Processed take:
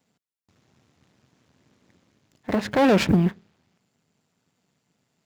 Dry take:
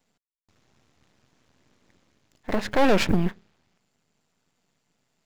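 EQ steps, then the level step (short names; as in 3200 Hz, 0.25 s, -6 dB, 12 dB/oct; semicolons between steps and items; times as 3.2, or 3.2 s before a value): HPF 100 Hz 12 dB/oct; low shelf 270 Hz +7.5 dB; 0.0 dB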